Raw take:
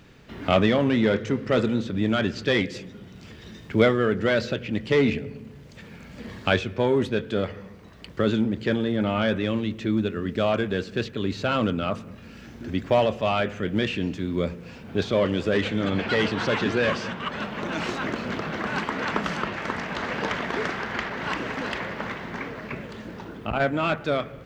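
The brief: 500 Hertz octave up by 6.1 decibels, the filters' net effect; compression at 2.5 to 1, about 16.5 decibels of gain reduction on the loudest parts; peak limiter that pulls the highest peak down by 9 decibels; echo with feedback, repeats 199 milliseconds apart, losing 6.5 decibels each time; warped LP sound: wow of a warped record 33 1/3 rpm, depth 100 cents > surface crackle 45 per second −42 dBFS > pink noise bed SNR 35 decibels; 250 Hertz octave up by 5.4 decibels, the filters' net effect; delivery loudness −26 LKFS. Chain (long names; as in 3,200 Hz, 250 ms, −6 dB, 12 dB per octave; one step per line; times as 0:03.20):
parametric band 250 Hz +5 dB
parametric band 500 Hz +6 dB
downward compressor 2.5 to 1, threshold −34 dBFS
brickwall limiter −23 dBFS
repeating echo 199 ms, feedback 47%, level −6.5 dB
wow of a warped record 33 1/3 rpm, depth 100 cents
surface crackle 45 per second −42 dBFS
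pink noise bed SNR 35 dB
level +7.5 dB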